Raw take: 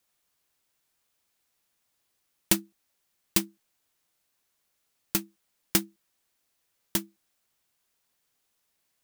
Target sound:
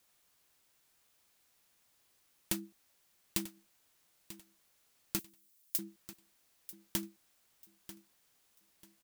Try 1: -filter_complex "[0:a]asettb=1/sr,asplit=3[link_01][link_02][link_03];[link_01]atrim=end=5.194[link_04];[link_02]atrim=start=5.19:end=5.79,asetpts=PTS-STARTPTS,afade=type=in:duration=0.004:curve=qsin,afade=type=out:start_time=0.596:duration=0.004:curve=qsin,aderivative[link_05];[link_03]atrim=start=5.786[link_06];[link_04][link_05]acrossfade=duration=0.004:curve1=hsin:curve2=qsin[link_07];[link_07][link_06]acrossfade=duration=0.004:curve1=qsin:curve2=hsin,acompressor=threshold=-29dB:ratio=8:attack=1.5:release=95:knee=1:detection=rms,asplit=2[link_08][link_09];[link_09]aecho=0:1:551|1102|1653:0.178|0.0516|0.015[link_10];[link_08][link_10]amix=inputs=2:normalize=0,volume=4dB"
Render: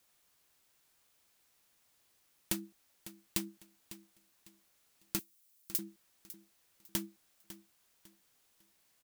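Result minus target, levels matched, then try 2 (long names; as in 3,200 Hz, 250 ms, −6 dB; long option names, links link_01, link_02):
echo 390 ms early
-filter_complex "[0:a]asettb=1/sr,asplit=3[link_01][link_02][link_03];[link_01]atrim=end=5.194[link_04];[link_02]atrim=start=5.19:end=5.79,asetpts=PTS-STARTPTS,afade=type=in:duration=0.004:curve=qsin,afade=type=out:start_time=0.596:duration=0.004:curve=qsin,aderivative[link_05];[link_03]atrim=start=5.786[link_06];[link_04][link_05]acrossfade=duration=0.004:curve1=hsin:curve2=qsin[link_07];[link_07][link_06]acrossfade=duration=0.004:curve1=qsin:curve2=hsin,acompressor=threshold=-29dB:ratio=8:attack=1.5:release=95:knee=1:detection=rms,asplit=2[link_08][link_09];[link_09]aecho=0:1:941|1882|2823:0.178|0.0516|0.015[link_10];[link_08][link_10]amix=inputs=2:normalize=0,volume=4dB"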